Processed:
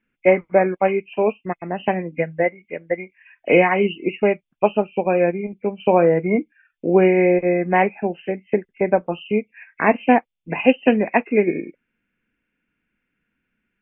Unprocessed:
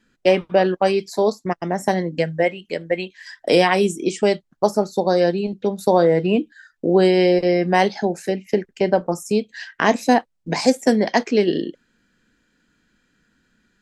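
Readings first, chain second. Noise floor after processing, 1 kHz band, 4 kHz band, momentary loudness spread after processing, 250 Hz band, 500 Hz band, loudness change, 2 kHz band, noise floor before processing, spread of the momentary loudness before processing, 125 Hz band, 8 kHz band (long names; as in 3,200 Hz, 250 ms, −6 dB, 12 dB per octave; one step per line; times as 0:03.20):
−78 dBFS, 0.0 dB, can't be measured, 12 LU, −0.5 dB, 0.0 dB, 0.0 dB, +1.5 dB, −70 dBFS, 10 LU, −1.5 dB, below −40 dB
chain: hearing-aid frequency compression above 2,000 Hz 4 to 1
expander for the loud parts 1.5 to 1, over −37 dBFS
level +2 dB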